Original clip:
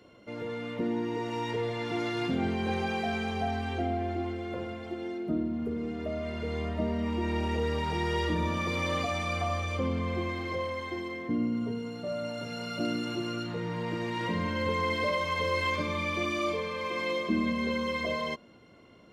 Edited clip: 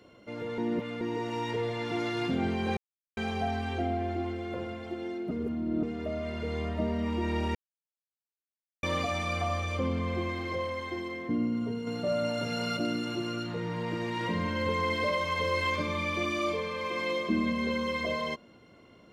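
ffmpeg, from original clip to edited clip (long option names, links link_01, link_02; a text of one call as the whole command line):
ffmpeg -i in.wav -filter_complex "[0:a]asplit=11[link_01][link_02][link_03][link_04][link_05][link_06][link_07][link_08][link_09][link_10][link_11];[link_01]atrim=end=0.582[link_12];[link_02]atrim=start=0.578:end=1.012,asetpts=PTS-STARTPTS,areverse[link_13];[link_03]atrim=start=1.008:end=2.77,asetpts=PTS-STARTPTS,afade=type=out:start_time=1.758:duration=0.004:curve=hsin[link_14];[link_04]atrim=start=2.77:end=3.17,asetpts=PTS-STARTPTS,volume=0[link_15];[link_05]atrim=start=3.17:end=5.312,asetpts=PTS-STARTPTS,afade=type=in:duration=0.004:curve=hsin[link_16];[link_06]atrim=start=5.308:end=5.832,asetpts=PTS-STARTPTS,areverse[link_17];[link_07]atrim=start=5.828:end=7.55,asetpts=PTS-STARTPTS,afade=type=out:start_time=1.718:duration=0.004:curve=hsin[link_18];[link_08]atrim=start=7.55:end=8.83,asetpts=PTS-STARTPTS,volume=0[link_19];[link_09]atrim=start=8.83:end=11.872,asetpts=PTS-STARTPTS,afade=type=in:duration=0.004:curve=hsin[link_20];[link_10]atrim=start=11.868:end=12.772,asetpts=PTS-STARTPTS,volume=5dB[link_21];[link_11]atrim=start=12.768[link_22];[link_12][link_13]acrossfade=duration=0.004:curve1=hsin:curve2=hsin[link_23];[link_14][link_15][link_16]concat=n=3:v=0:a=1[link_24];[link_23][link_24]acrossfade=duration=0.004:curve1=hsin:curve2=hsin[link_25];[link_25][link_17]acrossfade=duration=0.004:curve1=hsin:curve2=hsin[link_26];[link_18][link_19][link_20]concat=n=3:v=0:a=1[link_27];[link_26][link_27]acrossfade=duration=0.004:curve1=hsin:curve2=hsin[link_28];[link_28][link_21]acrossfade=duration=0.004:curve1=hsin:curve2=hsin[link_29];[link_29][link_22]acrossfade=duration=0.004:curve1=hsin:curve2=hsin" out.wav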